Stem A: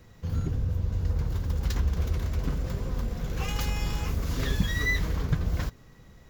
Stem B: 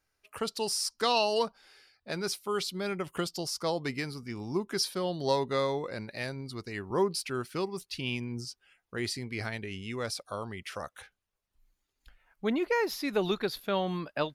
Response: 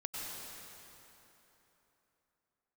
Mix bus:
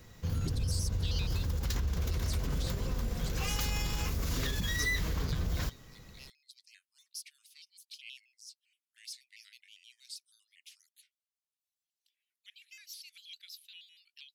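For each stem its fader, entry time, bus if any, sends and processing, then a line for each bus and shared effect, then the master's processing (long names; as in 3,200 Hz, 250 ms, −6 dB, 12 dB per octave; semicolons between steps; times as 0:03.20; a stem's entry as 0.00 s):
−2.0 dB, 0.00 s, no send, brickwall limiter −23 dBFS, peak gain reduction 11.5 dB
−14.5 dB, 0.00 s, no send, Butterworth high-pass 2,500 Hz; pitch modulation by a square or saw wave square 6.3 Hz, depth 160 cents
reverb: not used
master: high-shelf EQ 2,600 Hz +7.5 dB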